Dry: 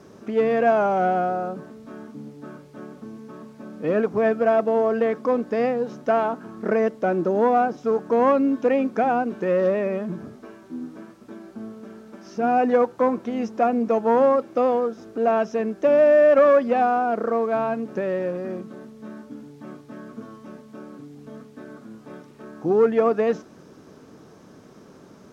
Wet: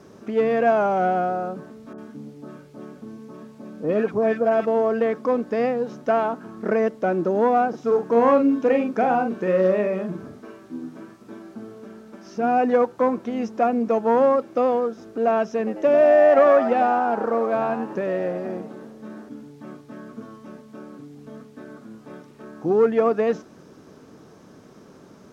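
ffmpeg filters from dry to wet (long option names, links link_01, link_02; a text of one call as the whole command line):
ffmpeg -i in.wav -filter_complex "[0:a]asettb=1/sr,asplit=3[link_01][link_02][link_03];[link_01]atrim=end=1.934[link_04];[link_02]atrim=start=1.93:end=4.67,asetpts=PTS-STARTPTS,afade=type=in:duration=0.004:curve=qsin,afade=type=out:start_time=2.736:duration=0.004:curve=qsin,acrossover=split=1300[link_05][link_06];[link_06]adelay=50[link_07];[link_05][link_07]amix=inputs=2:normalize=0,atrim=end_sample=120834[link_08];[link_03]atrim=start=4.666[link_09];[link_04][link_08]acrossfade=duration=0.004:curve1=hsin:curve2=qsin[link_10];[link_10][link_09]acrossfade=duration=0.004:curve1=qsin:curve2=hsin,asettb=1/sr,asplit=3[link_11][link_12][link_13];[link_11]atrim=end=7.694[link_14];[link_12]atrim=start=7.69:end=11.85,asetpts=PTS-STARTPTS,afade=type=in:duration=0.004:curve=qsin,afade=type=out:start_time=4.156:duration=0.004:curve=qsin,asplit=2[link_15][link_16];[link_16]adelay=43,volume=-5.5dB[link_17];[link_15][link_17]amix=inputs=2:normalize=0,atrim=end_sample=183456[link_18];[link_13]atrim=start=11.846[link_19];[link_14][link_18]acrossfade=duration=0.004:curve1=hsin:curve2=qsin[link_20];[link_20][link_19]acrossfade=duration=0.004:curve1=qsin:curve2=hsin,asettb=1/sr,asplit=3[link_21][link_22][link_23];[link_21]atrim=end=15.574[link_24];[link_22]atrim=start=15.57:end=19.29,asetpts=PTS-STARTPTS,afade=type=in:duration=0.004:curve=qsin,afade=type=out:start_time=3.716:duration=0.004:curve=qsin,asplit=5[link_25][link_26][link_27][link_28][link_29];[link_26]adelay=96,afreqshift=94,volume=-10dB[link_30];[link_27]adelay=192,afreqshift=188,volume=-17.7dB[link_31];[link_28]adelay=288,afreqshift=282,volume=-25.5dB[link_32];[link_29]adelay=384,afreqshift=376,volume=-33.2dB[link_33];[link_25][link_30][link_31][link_32][link_33]amix=inputs=5:normalize=0,atrim=end_sample=164052[link_34];[link_23]atrim=start=19.286[link_35];[link_24][link_34]acrossfade=duration=0.004:curve1=hsin:curve2=qsin[link_36];[link_36][link_35]acrossfade=duration=0.004:curve1=qsin:curve2=hsin" out.wav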